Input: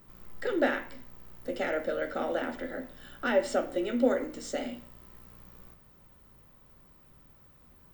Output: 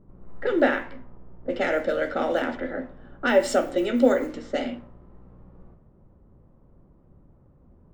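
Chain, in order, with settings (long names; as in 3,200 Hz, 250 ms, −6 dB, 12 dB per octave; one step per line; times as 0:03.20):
high-shelf EQ 5,400 Hz −10 dB, from 0:01.48 +3.5 dB
low-pass that shuts in the quiet parts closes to 490 Hz, open at −25.5 dBFS
level +6.5 dB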